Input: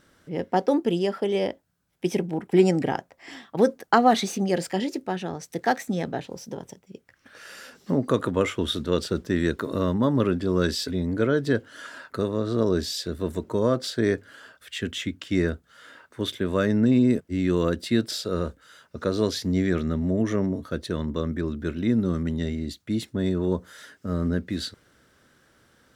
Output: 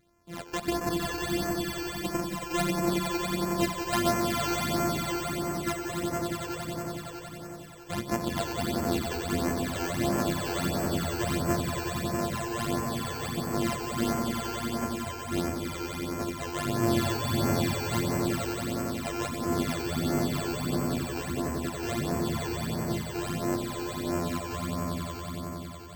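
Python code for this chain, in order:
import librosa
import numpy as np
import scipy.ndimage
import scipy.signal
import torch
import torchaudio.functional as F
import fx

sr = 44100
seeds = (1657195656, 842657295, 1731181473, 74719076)

y = np.r_[np.sort(x[:len(x) // 128 * 128].reshape(-1, 128), axis=1).ravel(), x[len(x) // 128 * 128:]]
y = fx.echo_swell(y, sr, ms=92, loudest=5, wet_db=-5.0)
y = fx.phaser_stages(y, sr, stages=12, low_hz=190.0, high_hz=3800.0, hz=1.5, feedback_pct=5)
y = y * librosa.db_to_amplitude(-6.5)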